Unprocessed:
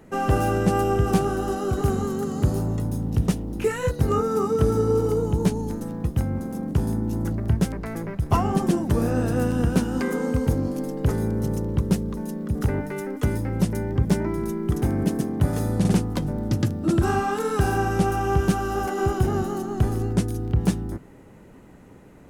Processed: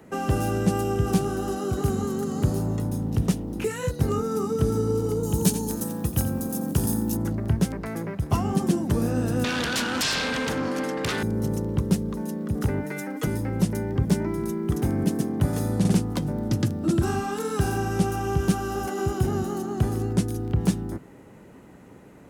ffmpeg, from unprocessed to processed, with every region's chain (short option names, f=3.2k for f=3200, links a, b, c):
-filter_complex "[0:a]asettb=1/sr,asplit=3[a][b][c];[a]atrim=end=5.234[d];[b]atrim=start=5.23:end=7.17,asetpts=PTS-STARTPTS,afade=t=in:d=0.004:c=qsin,afade=t=out:st=1.936:d=0.004:c=qsin,aemphasis=mode=production:type=75kf,bandreject=f=2.1k:w=10,aecho=1:1:87:0.251,atrim=end_sample=85554[e];[c]atrim=start=7.166[f];[d][e]acrossfade=d=0.004:c1=hsin:c2=qsin[g];[g][f]acrossfade=d=0.004:c1=qsin:c2=hsin,asettb=1/sr,asplit=3[h][i][j];[h]atrim=end=9.444[k];[i]atrim=start=9.44:end=11.23,asetpts=PTS-STARTPTS,afade=t=in:d=0.004:c=qsin,afade=t=out:st=1.786:d=0.004:c=qsin,bandpass=f=1.7k:t=q:w=1.7,aeval=exprs='0.106*sin(PI/2*8.91*val(0)/0.106)':c=same[l];[j]atrim=start=11.226[m];[k][l]acrossfade=d=0.004:c1=hsin:c2=qsin[n];[n][m]acrossfade=d=0.004:c1=qsin:c2=hsin,asettb=1/sr,asplit=3[o][p][q];[o]atrim=end=12.844[r];[p]atrim=start=12.84:end=13.27,asetpts=PTS-STARTPTS,afade=t=in:d=0.004:c=qsin,afade=t=out:st=0.426:d=0.004:c=qsin,highpass=f=210:p=1,aecho=1:1:6.3:0.78,atrim=end_sample=18963[s];[q]atrim=start=13.266[t];[r][s]acrossfade=d=0.004:c1=hsin:c2=qsin[u];[u][t]acrossfade=d=0.004:c1=qsin:c2=hsin,highpass=f=99:p=1,acrossover=split=310|3000[v][w][x];[w]acompressor=threshold=-33dB:ratio=2.5[y];[v][y][x]amix=inputs=3:normalize=0,volume=1dB"